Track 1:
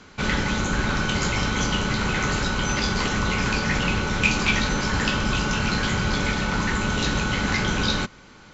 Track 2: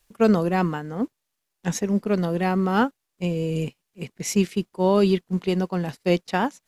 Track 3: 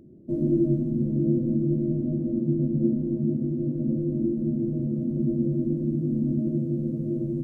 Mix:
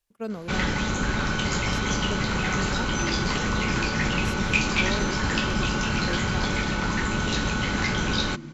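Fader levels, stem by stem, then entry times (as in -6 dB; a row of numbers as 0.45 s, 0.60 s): -2.0 dB, -14.5 dB, -13.5 dB; 0.30 s, 0.00 s, 2.50 s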